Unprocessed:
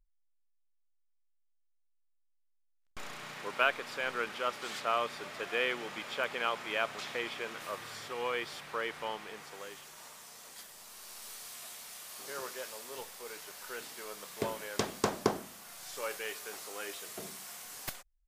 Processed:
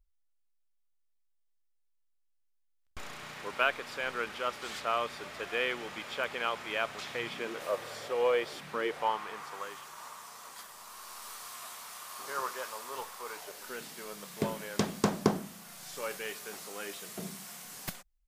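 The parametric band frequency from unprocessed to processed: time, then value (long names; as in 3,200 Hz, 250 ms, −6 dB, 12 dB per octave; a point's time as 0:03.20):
parametric band +12 dB 0.81 octaves
0:07.07 65 Hz
0:07.63 550 Hz
0:08.49 550 Hz
0:08.67 160 Hz
0:09.12 1,100 Hz
0:13.32 1,100 Hz
0:13.77 180 Hz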